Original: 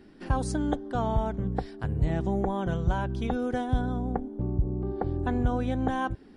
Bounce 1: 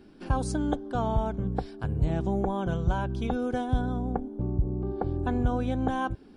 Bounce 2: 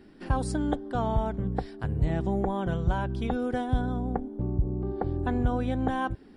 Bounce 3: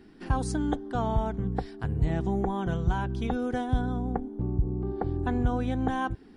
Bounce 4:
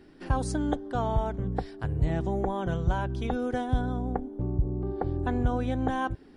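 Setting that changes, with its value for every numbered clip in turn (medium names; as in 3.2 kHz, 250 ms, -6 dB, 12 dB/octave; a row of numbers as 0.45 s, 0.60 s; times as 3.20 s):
band-stop, frequency: 1.9 kHz, 6.3 kHz, 570 Hz, 210 Hz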